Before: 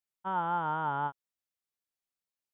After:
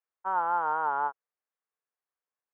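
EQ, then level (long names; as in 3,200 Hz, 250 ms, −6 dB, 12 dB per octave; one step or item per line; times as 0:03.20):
loudspeaker in its box 440–2,200 Hz, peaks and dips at 460 Hz +8 dB, 760 Hz +4 dB, 1,100 Hz +6 dB, 1,600 Hz +4 dB
0.0 dB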